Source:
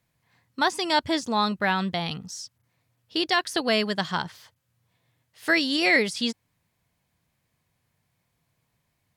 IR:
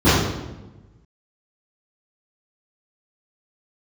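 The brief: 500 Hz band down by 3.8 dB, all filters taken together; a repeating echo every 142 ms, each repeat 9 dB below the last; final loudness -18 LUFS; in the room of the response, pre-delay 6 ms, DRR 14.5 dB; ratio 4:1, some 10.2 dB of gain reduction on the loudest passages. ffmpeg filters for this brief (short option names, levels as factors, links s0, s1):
-filter_complex "[0:a]equalizer=f=500:t=o:g=-5.5,acompressor=threshold=0.0316:ratio=4,aecho=1:1:142|284|426|568:0.355|0.124|0.0435|0.0152,asplit=2[s0][s1];[1:a]atrim=start_sample=2205,adelay=6[s2];[s1][s2]afir=irnorm=-1:irlink=0,volume=0.01[s3];[s0][s3]amix=inputs=2:normalize=0,volume=5.31"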